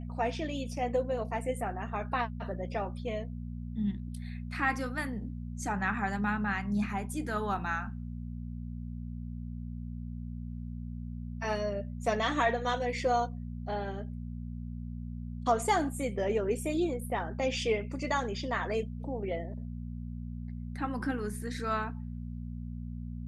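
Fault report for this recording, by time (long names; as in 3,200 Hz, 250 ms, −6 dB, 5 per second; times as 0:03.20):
mains hum 60 Hz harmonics 4 −39 dBFS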